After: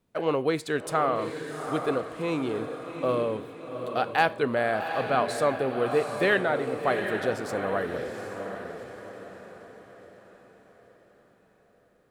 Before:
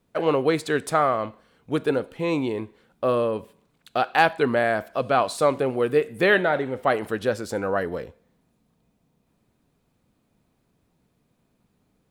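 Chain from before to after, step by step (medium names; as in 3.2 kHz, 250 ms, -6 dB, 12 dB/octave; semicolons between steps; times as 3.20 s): echo that smears into a reverb 765 ms, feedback 45%, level -7 dB; trim -4.5 dB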